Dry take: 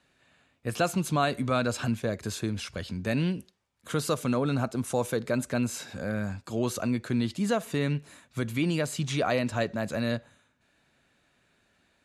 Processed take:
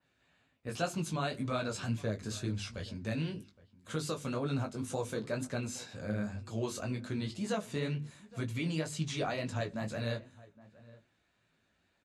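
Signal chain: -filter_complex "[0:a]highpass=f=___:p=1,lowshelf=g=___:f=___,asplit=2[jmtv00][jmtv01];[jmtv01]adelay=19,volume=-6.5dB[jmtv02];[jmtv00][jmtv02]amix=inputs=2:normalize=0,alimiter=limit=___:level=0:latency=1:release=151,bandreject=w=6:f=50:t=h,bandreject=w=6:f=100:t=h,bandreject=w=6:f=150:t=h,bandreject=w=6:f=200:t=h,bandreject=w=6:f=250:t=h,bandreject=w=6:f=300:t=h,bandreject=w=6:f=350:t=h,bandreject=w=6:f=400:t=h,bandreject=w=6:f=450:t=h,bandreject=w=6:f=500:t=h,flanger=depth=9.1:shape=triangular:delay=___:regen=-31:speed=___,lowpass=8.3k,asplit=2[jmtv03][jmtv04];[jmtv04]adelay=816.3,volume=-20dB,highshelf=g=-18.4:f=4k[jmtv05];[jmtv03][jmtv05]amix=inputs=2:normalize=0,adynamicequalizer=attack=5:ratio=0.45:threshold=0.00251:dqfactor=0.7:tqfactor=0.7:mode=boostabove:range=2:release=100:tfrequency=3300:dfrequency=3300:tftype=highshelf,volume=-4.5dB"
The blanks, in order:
62, 10, 110, -14.5dB, 5.7, 2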